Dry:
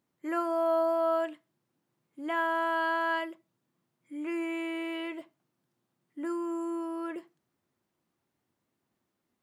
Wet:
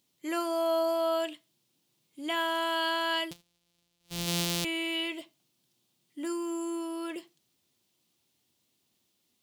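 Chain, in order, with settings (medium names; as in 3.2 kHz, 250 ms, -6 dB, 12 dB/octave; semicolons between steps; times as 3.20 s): 3.31–4.65 s: sorted samples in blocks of 256 samples; resonant high shelf 2.3 kHz +12 dB, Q 1.5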